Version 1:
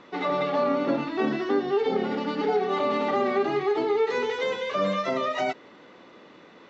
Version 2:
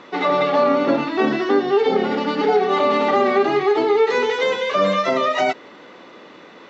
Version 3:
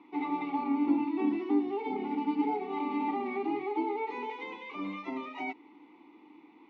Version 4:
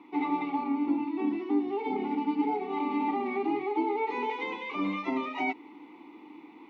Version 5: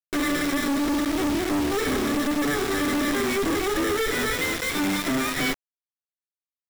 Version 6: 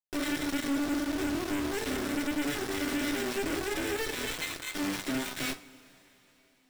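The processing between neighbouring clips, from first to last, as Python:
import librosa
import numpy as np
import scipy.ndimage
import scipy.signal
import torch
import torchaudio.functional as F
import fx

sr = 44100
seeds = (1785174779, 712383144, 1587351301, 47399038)

y1 = fx.low_shelf(x, sr, hz=180.0, db=-7.5)
y1 = F.gain(torch.from_numpy(y1), 8.5).numpy()
y2 = fx.vowel_filter(y1, sr, vowel='u')
y2 = F.gain(torch.from_numpy(y2), -2.5).numpy()
y3 = fx.rider(y2, sr, range_db=4, speed_s=0.5)
y3 = F.gain(torch.from_numpy(y3), 2.5).numpy()
y4 = fx.lower_of_two(y3, sr, delay_ms=0.54)
y4 = fx.quant_companded(y4, sr, bits=2)
y4 = F.gain(torch.from_numpy(y4), 2.5).numpy()
y5 = fx.self_delay(y4, sr, depth_ms=0.19)
y5 = fx.rev_double_slope(y5, sr, seeds[0], early_s=0.27, late_s=4.1, knee_db=-21, drr_db=7.5)
y5 = F.gain(torch.from_numpy(y5), -7.5).numpy()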